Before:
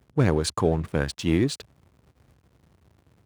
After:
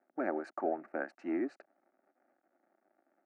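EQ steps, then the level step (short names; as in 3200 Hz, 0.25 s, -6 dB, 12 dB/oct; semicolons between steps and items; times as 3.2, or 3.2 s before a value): Bessel high-pass 510 Hz, order 4; LPF 1100 Hz 12 dB/oct; fixed phaser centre 680 Hz, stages 8; 0.0 dB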